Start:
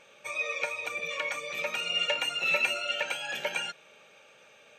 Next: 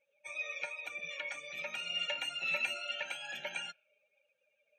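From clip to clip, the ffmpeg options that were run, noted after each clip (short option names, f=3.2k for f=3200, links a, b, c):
-af "equalizer=f=1.1k:t=o:w=0.21:g=-13.5,afftdn=nr=24:nf=-48,equalizer=f=450:t=o:w=0.4:g=-13,volume=-7dB"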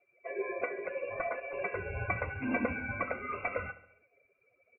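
-af "aecho=1:1:69|138|207|276|345:0.15|0.0823|0.0453|0.0249|0.0137,lowpass=f=2.5k:t=q:w=0.5098,lowpass=f=2.5k:t=q:w=0.6013,lowpass=f=2.5k:t=q:w=0.9,lowpass=f=2.5k:t=q:w=2.563,afreqshift=-2900,volume=7dB"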